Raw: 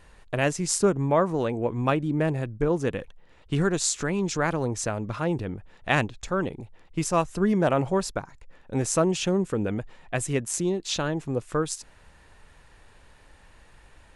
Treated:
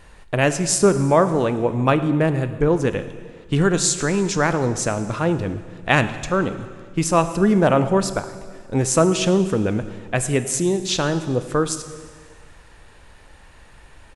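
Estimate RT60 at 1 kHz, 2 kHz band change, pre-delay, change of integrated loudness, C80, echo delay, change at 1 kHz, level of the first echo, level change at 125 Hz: 1.7 s, +6.5 dB, 21 ms, +6.5 dB, 13.0 dB, 110 ms, +6.5 dB, -21.5 dB, +6.5 dB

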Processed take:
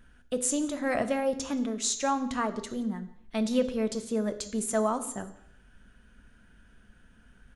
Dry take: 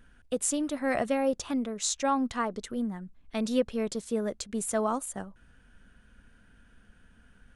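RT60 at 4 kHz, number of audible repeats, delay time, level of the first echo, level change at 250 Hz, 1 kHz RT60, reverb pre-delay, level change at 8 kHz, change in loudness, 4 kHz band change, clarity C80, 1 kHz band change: 0.70 s, 1, 176 ms, -23.5 dB, +0.5 dB, 0.70 s, 3 ms, +1.0 dB, +0.5 dB, +1.0 dB, 15.5 dB, 0.0 dB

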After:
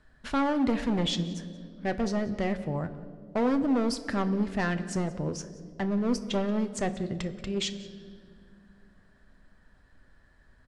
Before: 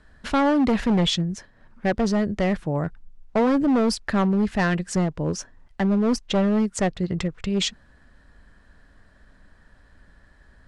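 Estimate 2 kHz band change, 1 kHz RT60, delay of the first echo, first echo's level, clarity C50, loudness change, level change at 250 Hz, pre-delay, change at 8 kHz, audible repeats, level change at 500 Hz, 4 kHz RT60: -6.5 dB, 1.8 s, 181 ms, -20.0 dB, 13.0 dB, -6.5 dB, -6.5 dB, 8 ms, -6.5 dB, 1, -6.5 dB, 1.5 s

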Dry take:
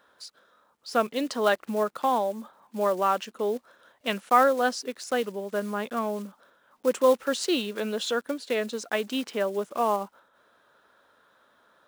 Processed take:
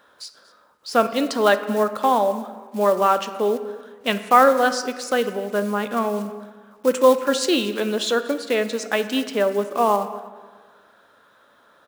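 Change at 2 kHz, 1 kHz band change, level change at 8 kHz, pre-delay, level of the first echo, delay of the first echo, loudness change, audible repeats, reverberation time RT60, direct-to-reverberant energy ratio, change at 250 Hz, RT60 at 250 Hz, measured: +6.5 dB, +6.5 dB, +6.5 dB, 4 ms, -20.0 dB, 236 ms, +6.5 dB, 1, 1.5 s, 9.5 dB, +6.5 dB, 1.5 s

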